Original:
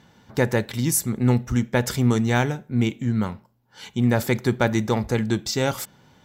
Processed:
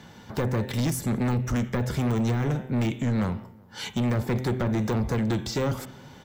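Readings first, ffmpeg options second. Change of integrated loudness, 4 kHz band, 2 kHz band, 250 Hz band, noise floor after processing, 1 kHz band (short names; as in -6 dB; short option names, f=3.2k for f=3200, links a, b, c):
-4.0 dB, -5.0 dB, -8.0 dB, -3.5 dB, -49 dBFS, -5.0 dB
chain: -filter_complex "[0:a]deesser=0.9,bandreject=f=128.7:t=h:w=4,bandreject=f=257.4:t=h:w=4,bandreject=f=386.1:t=h:w=4,bandreject=f=514.8:t=h:w=4,bandreject=f=643.5:t=h:w=4,bandreject=f=772.2:t=h:w=4,bandreject=f=900.9:t=h:w=4,bandreject=f=1.0296k:t=h:w=4,bandreject=f=1.1583k:t=h:w=4,bandreject=f=1.287k:t=h:w=4,bandreject=f=1.4157k:t=h:w=4,bandreject=f=1.5444k:t=h:w=4,bandreject=f=1.6731k:t=h:w=4,bandreject=f=1.8018k:t=h:w=4,bandreject=f=1.9305k:t=h:w=4,bandreject=f=2.0592k:t=h:w=4,bandreject=f=2.1879k:t=h:w=4,bandreject=f=2.3166k:t=h:w=4,bandreject=f=2.4453k:t=h:w=4,bandreject=f=2.574k:t=h:w=4,bandreject=f=2.7027k:t=h:w=4,bandreject=f=2.8314k:t=h:w=4,bandreject=f=2.9601k:t=h:w=4,bandreject=f=3.0888k:t=h:w=4,bandreject=f=3.2175k:t=h:w=4,bandreject=f=3.3462k:t=h:w=4,bandreject=f=3.4749k:t=h:w=4,bandreject=f=3.6036k:t=h:w=4,acrossover=split=94|490[a][b][c];[a]acompressor=threshold=-34dB:ratio=4[d];[b]acompressor=threshold=-25dB:ratio=4[e];[c]acompressor=threshold=-36dB:ratio=4[f];[d][e][f]amix=inputs=3:normalize=0,asoftclip=type=tanh:threshold=-28dB,asplit=2[g][h];[h]adelay=186,lowpass=f=1.7k:p=1,volume=-22.5dB,asplit=2[i][j];[j]adelay=186,lowpass=f=1.7k:p=1,volume=0.53,asplit=2[k][l];[l]adelay=186,lowpass=f=1.7k:p=1,volume=0.53,asplit=2[m][n];[n]adelay=186,lowpass=f=1.7k:p=1,volume=0.53[o];[g][i][k][m][o]amix=inputs=5:normalize=0,volume=7dB"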